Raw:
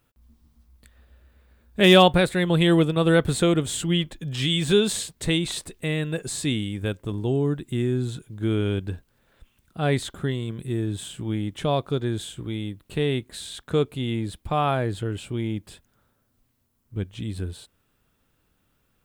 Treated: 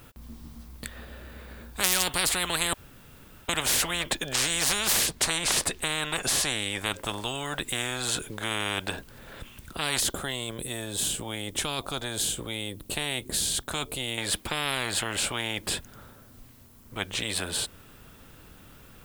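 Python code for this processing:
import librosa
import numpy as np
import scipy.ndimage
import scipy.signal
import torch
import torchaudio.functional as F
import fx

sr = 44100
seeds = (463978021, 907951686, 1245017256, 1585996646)

y = fx.high_shelf(x, sr, hz=10000.0, db=-7.5, at=(5.06, 6.96))
y = fx.peak_eq(y, sr, hz=1700.0, db=-12.5, octaves=2.7, at=(10.0, 14.18))
y = fx.edit(y, sr, fx.room_tone_fill(start_s=2.73, length_s=0.76), tone=tone)
y = fx.spectral_comp(y, sr, ratio=10.0)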